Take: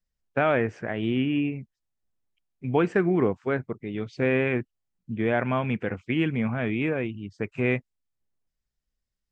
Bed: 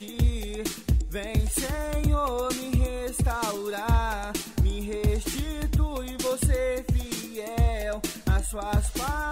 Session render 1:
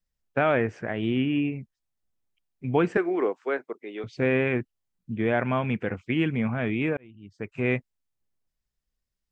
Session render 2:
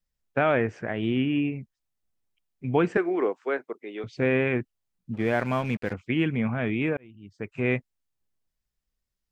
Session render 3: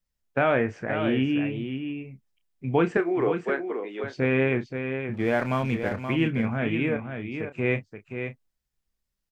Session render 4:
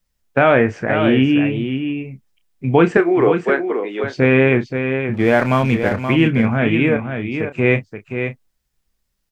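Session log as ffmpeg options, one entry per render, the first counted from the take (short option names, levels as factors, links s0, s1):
-filter_complex "[0:a]asettb=1/sr,asplit=3[s0][s1][s2];[s0]atrim=end=2.974[s3];[s1]atrim=start=2.97:end=4.04,asetpts=PTS-STARTPTS,afade=t=in:d=0.004:c=qsin,afade=t=out:st=1.066:d=0.004:c=qsin,highpass=f=330:w=0.5412,highpass=f=330:w=1.3066[s4];[s2]atrim=start=4.036[s5];[s3][s4]acrossfade=d=0.004:c1=hsin:c2=qsin[s6];[s6][s5]acrossfade=d=0.004:c1=qsin:c2=hsin,asplit=2[s7][s8];[s7]atrim=end=6.97,asetpts=PTS-STARTPTS,afade=t=out:st=6.966:d=0.004:c=hsin[s9];[s8]atrim=start=6.97,asetpts=PTS-STARTPTS,afade=t=in:d=0.78[s10];[s9][s10]concat=n=2:v=0:a=1"
-filter_complex "[0:a]asplit=3[s0][s1][s2];[s0]afade=t=out:st=5.13:d=0.02[s3];[s1]aeval=exprs='sgn(val(0))*max(abs(val(0))-0.00708,0)':c=same,afade=t=in:st=5.13:d=0.02,afade=t=out:st=5.92:d=0.02[s4];[s2]afade=t=in:st=5.92:d=0.02[s5];[s3][s4][s5]amix=inputs=3:normalize=0"
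-filter_complex "[0:a]asplit=2[s0][s1];[s1]adelay=30,volume=0.316[s2];[s0][s2]amix=inputs=2:normalize=0,asplit=2[s3][s4];[s4]aecho=0:1:526:0.422[s5];[s3][s5]amix=inputs=2:normalize=0"
-af "volume=3.16,alimiter=limit=0.891:level=0:latency=1"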